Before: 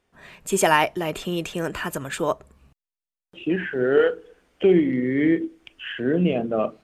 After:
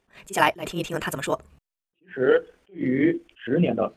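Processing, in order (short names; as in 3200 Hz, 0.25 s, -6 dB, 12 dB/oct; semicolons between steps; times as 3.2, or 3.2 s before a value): granular stretch 0.58×, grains 45 ms; attack slew limiter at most 220 dB/s; gain +1.5 dB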